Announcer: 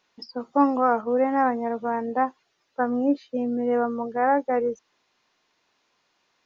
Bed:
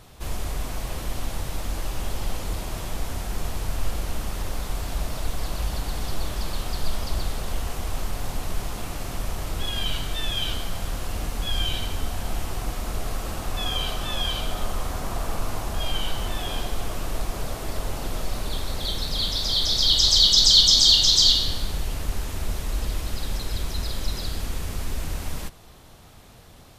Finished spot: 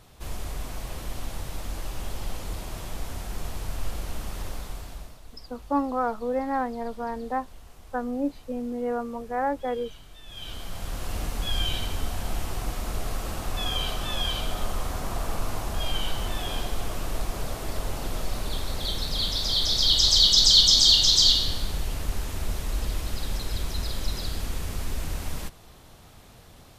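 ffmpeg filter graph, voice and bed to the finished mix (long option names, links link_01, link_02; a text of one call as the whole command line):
ffmpeg -i stem1.wav -i stem2.wav -filter_complex "[0:a]adelay=5150,volume=-5.5dB[link_01];[1:a]volume=13.5dB,afade=type=out:start_time=4.46:duration=0.73:silence=0.177828,afade=type=in:start_time=10.25:duration=0.9:silence=0.125893[link_02];[link_01][link_02]amix=inputs=2:normalize=0" out.wav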